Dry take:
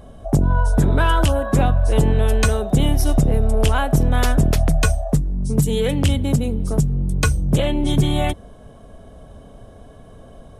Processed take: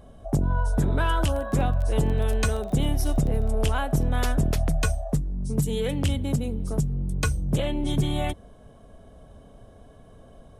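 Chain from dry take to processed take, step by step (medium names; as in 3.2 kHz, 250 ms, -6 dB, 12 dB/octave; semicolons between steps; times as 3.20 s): 1.32–3.55 s: crackle 14 per s -22 dBFS; trim -7 dB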